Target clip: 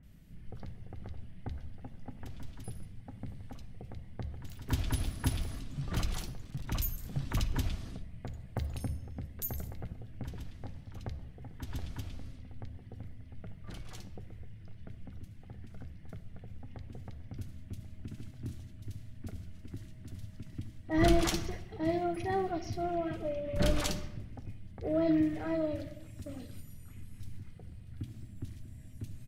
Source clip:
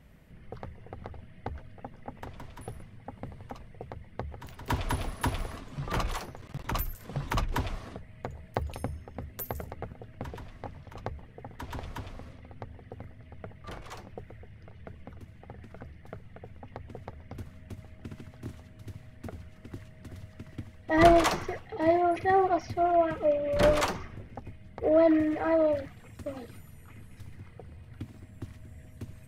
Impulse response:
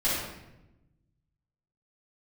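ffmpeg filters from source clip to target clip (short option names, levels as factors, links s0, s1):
-filter_complex "[0:a]equalizer=f=500:t=o:w=1:g=-9,equalizer=f=1000:t=o:w=1:g=-12,equalizer=f=2000:t=o:w=1:g=-3,asplit=2[s0][s1];[s1]asetrate=22050,aresample=44100,atempo=2,volume=0.2[s2];[s0][s2]amix=inputs=2:normalize=0,acrossover=split=2100[s3][s4];[s4]adelay=30[s5];[s3][s5]amix=inputs=2:normalize=0,asplit=2[s6][s7];[1:a]atrim=start_sample=2205[s8];[s7][s8]afir=irnorm=-1:irlink=0,volume=0.0708[s9];[s6][s9]amix=inputs=2:normalize=0"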